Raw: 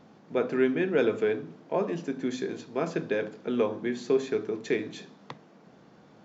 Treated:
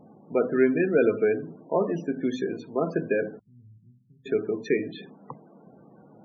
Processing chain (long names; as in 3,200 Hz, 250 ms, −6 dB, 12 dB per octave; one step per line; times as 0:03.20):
0:03.39–0:04.26: inverse Chebyshev low-pass filter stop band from 590 Hz, stop band 80 dB
spectral peaks only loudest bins 32
level +3.5 dB